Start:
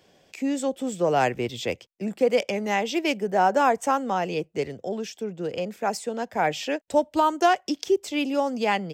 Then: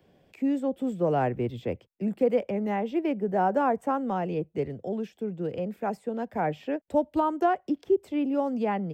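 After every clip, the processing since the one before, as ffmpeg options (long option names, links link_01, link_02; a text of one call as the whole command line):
ffmpeg -i in.wav -filter_complex "[0:a]lowshelf=frequency=370:gain=10.5,acrossover=split=120|780|1900[link_01][link_02][link_03][link_04];[link_04]acompressor=threshold=-42dB:ratio=6[link_05];[link_01][link_02][link_03][link_05]amix=inputs=4:normalize=0,equalizer=frequency=6200:width_type=o:width=1.1:gain=-11.5,volume=-6.5dB" out.wav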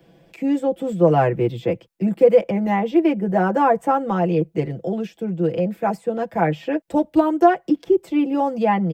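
ffmpeg -i in.wav -af "aecho=1:1:6:0.83,volume=6.5dB" out.wav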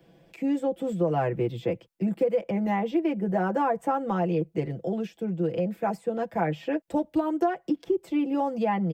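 ffmpeg -i in.wav -af "acompressor=threshold=-17dB:ratio=4,volume=-4.5dB" out.wav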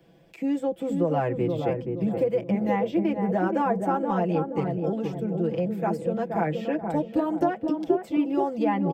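ffmpeg -i in.wav -filter_complex "[0:a]asplit=2[link_01][link_02];[link_02]adelay=475,lowpass=frequency=850:poles=1,volume=-3.5dB,asplit=2[link_03][link_04];[link_04]adelay=475,lowpass=frequency=850:poles=1,volume=0.48,asplit=2[link_05][link_06];[link_06]adelay=475,lowpass=frequency=850:poles=1,volume=0.48,asplit=2[link_07][link_08];[link_08]adelay=475,lowpass=frequency=850:poles=1,volume=0.48,asplit=2[link_09][link_10];[link_10]adelay=475,lowpass=frequency=850:poles=1,volume=0.48,asplit=2[link_11][link_12];[link_12]adelay=475,lowpass=frequency=850:poles=1,volume=0.48[link_13];[link_01][link_03][link_05][link_07][link_09][link_11][link_13]amix=inputs=7:normalize=0" out.wav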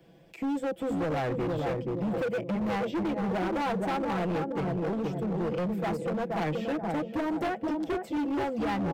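ffmpeg -i in.wav -af "asoftclip=type=hard:threshold=-27dB" out.wav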